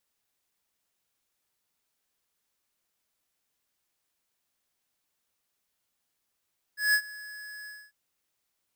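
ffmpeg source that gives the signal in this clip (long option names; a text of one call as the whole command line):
ffmpeg -f lavfi -i "aevalsrc='0.0841*(2*lt(mod(1690*t,1),0.5)-1)':duration=1.147:sample_rate=44100,afade=type=in:duration=0.168,afade=type=out:start_time=0.168:duration=0.072:silence=0.0891,afade=type=out:start_time=0.9:duration=0.247" out.wav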